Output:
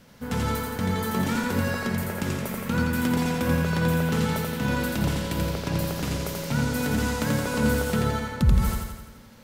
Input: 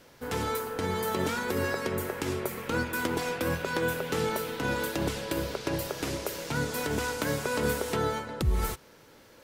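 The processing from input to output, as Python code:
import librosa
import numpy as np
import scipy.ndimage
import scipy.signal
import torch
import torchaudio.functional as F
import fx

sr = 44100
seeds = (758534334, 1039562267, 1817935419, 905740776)

y = fx.low_shelf_res(x, sr, hz=270.0, db=6.0, q=3.0)
y = fx.echo_feedback(y, sr, ms=85, feedback_pct=57, wet_db=-3)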